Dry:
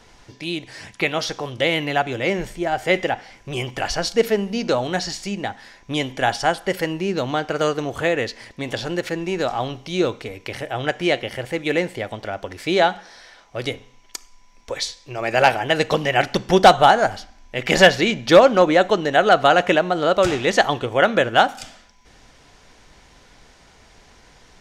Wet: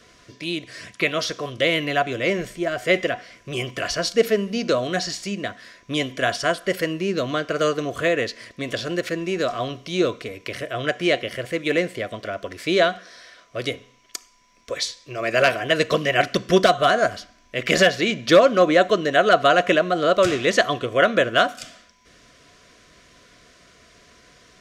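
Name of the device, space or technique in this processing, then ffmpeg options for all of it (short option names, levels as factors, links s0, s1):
PA system with an anti-feedback notch: -af "highpass=f=120:p=1,asuperstop=centerf=850:order=20:qfactor=3.7,alimiter=limit=0.668:level=0:latency=1:release=389"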